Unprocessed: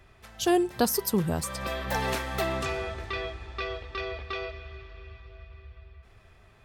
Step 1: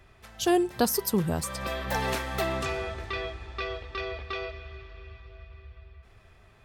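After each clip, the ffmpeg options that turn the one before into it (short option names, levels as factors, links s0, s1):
-af anull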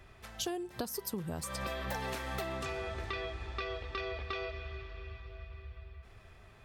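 -af "acompressor=threshold=0.02:ratio=12"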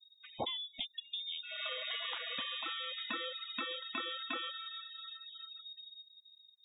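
-af "lowpass=f=3200:t=q:w=0.5098,lowpass=f=3200:t=q:w=0.6013,lowpass=f=3200:t=q:w=0.9,lowpass=f=3200:t=q:w=2.563,afreqshift=-3800,afftfilt=real='re*gte(hypot(re,im),0.00794)':imag='im*gte(hypot(re,im),0.00794)':win_size=1024:overlap=0.75,tiltshelf=f=1100:g=9.5,volume=1.58"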